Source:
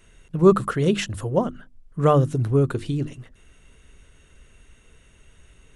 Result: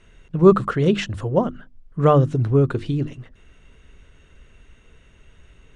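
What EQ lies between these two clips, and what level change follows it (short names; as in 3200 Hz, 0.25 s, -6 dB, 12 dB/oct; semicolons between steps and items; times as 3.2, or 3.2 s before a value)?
air absorption 100 m; +2.5 dB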